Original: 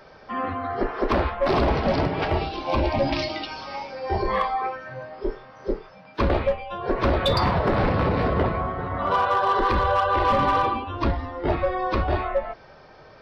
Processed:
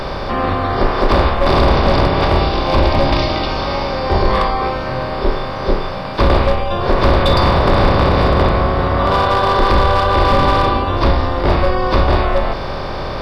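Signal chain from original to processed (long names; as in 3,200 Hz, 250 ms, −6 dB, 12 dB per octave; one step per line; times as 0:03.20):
compressor on every frequency bin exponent 0.4
low-shelf EQ 62 Hz +11 dB
level +2 dB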